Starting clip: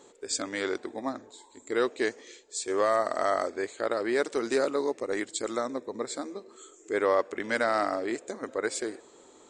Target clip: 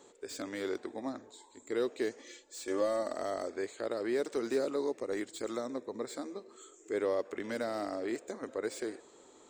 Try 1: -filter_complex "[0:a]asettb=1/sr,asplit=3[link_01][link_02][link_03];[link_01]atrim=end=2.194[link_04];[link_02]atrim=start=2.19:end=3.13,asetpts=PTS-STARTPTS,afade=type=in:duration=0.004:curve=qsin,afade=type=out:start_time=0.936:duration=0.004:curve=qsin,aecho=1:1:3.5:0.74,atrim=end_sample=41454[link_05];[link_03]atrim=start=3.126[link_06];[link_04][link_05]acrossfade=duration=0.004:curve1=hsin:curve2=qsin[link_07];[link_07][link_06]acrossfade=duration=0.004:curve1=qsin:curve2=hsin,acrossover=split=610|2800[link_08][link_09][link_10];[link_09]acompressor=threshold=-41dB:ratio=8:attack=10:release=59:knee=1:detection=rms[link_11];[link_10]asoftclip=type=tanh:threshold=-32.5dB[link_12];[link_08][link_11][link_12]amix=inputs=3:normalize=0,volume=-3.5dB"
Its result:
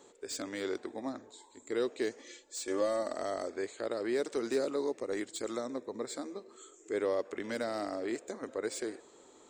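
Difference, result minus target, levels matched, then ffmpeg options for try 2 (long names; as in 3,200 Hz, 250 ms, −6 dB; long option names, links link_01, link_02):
soft clipping: distortion −5 dB
-filter_complex "[0:a]asettb=1/sr,asplit=3[link_01][link_02][link_03];[link_01]atrim=end=2.194[link_04];[link_02]atrim=start=2.19:end=3.13,asetpts=PTS-STARTPTS,afade=type=in:duration=0.004:curve=qsin,afade=type=out:start_time=0.936:duration=0.004:curve=qsin,aecho=1:1:3.5:0.74,atrim=end_sample=41454[link_05];[link_03]atrim=start=3.126[link_06];[link_04][link_05]acrossfade=duration=0.004:curve1=hsin:curve2=qsin[link_07];[link_07][link_06]acrossfade=duration=0.004:curve1=qsin:curve2=hsin,acrossover=split=610|2800[link_08][link_09][link_10];[link_09]acompressor=threshold=-41dB:ratio=8:attack=10:release=59:knee=1:detection=rms[link_11];[link_10]asoftclip=type=tanh:threshold=-40.5dB[link_12];[link_08][link_11][link_12]amix=inputs=3:normalize=0,volume=-3.5dB"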